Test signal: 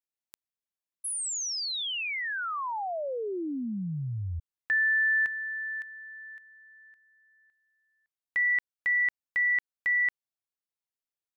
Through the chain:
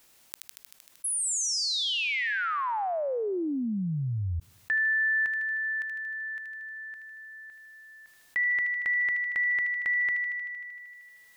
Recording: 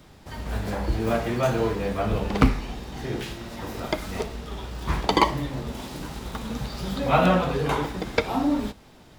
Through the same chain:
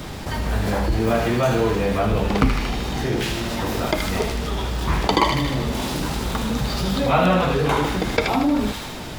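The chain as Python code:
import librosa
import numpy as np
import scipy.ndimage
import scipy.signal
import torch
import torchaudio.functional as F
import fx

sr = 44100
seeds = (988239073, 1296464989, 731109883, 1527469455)

p1 = x + fx.echo_wet_highpass(x, sr, ms=77, feedback_pct=64, hz=1800.0, wet_db=-7, dry=0)
p2 = fx.env_flatten(p1, sr, amount_pct=50)
y = F.gain(torch.from_numpy(p2), -1.0).numpy()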